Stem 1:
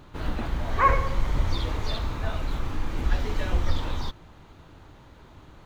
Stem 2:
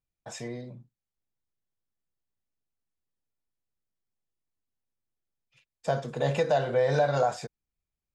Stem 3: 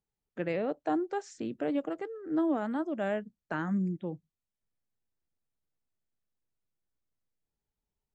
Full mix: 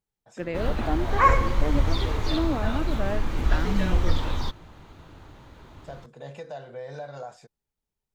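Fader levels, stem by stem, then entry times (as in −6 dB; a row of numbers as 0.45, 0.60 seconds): +2.0, −13.5, +1.0 decibels; 0.40, 0.00, 0.00 seconds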